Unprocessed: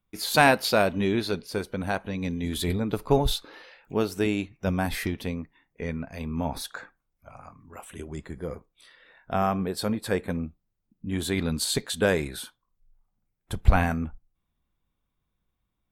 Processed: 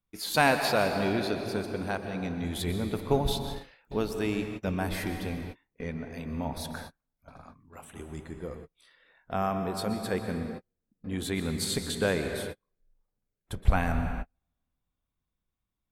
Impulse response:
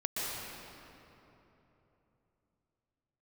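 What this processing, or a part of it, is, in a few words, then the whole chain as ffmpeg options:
keyed gated reverb: -filter_complex "[0:a]asplit=3[a][b][c];[1:a]atrim=start_sample=2205[d];[b][d]afir=irnorm=-1:irlink=0[e];[c]apad=whole_len=702010[f];[e][f]sidechaingate=range=-48dB:threshold=-45dB:ratio=16:detection=peak,volume=-8dB[g];[a][g]amix=inputs=2:normalize=0,volume=-7dB"

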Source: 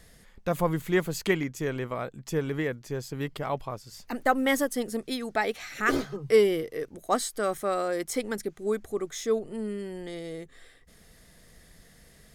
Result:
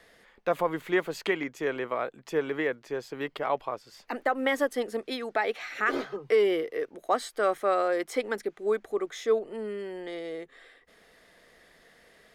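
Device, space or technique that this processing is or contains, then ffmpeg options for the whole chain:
DJ mixer with the lows and highs turned down: -filter_complex "[0:a]acrossover=split=300 3800:gain=0.1 1 0.2[a][b][c];[a][b][c]amix=inputs=3:normalize=0,alimiter=limit=-18dB:level=0:latency=1:release=138,volume=3.5dB"

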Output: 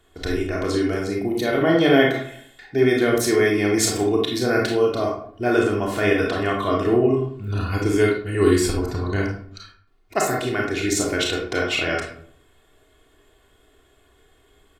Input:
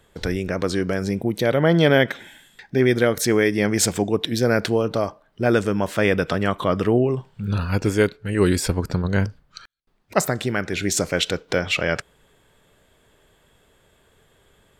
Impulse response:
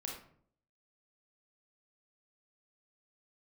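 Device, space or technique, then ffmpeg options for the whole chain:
microphone above a desk: -filter_complex "[0:a]asettb=1/sr,asplit=3[a][b][c];[a]atrim=end=1.944[d];[b]atrim=start=1.94:end=2.97,asetpts=PTS-STARTPTS,afade=t=in:d=0.004:c=qsin,afade=t=out:st=1.026:d=0.004:c=qsin,equalizer=f=630:w=3.7:g=6[e];[c]atrim=start=2.966[f];[d][e]acrossfade=d=0.004:c1=hsin:c2=qsin[g];[g][f]acrossfade=d=0.004:c1=qsin:c2=hsin,aecho=1:1:2.8:0.67[h];[1:a]atrim=start_sample=2205[i];[h][i]afir=irnorm=-1:irlink=0"

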